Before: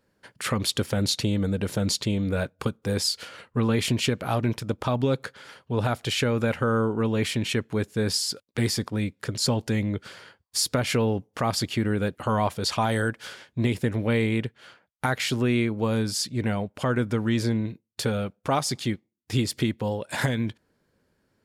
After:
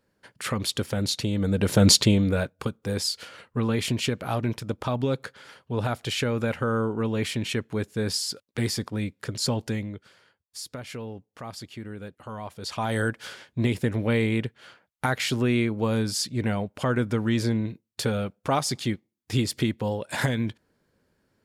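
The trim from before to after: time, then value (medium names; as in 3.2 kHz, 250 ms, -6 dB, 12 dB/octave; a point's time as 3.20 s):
1.32 s -2 dB
1.91 s +10 dB
2.55 s -2 dB
9.68 s -2 dB
10.08 s -13 dB
12.44 s -13 dB
13.01 s 0 dB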